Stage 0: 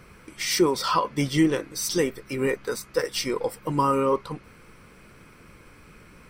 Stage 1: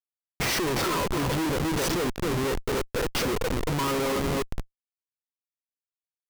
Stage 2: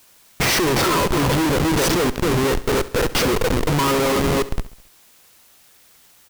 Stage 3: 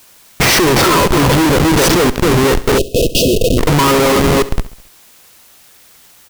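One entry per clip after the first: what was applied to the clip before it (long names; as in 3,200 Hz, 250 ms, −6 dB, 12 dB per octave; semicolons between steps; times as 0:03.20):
tape delay 266 ms, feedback 40%, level −5 dB, low-pass 2,800 Hz; comparator with hysteresis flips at −27 dBFS
bit-depth reduction 10 bits, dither triangular; repeating echo 68 ms, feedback 49%, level −17 dB; level +8 dB
time-frequency box erased 0:02.78–0:03.58, 690–2,500 Hz; level +7.5 dB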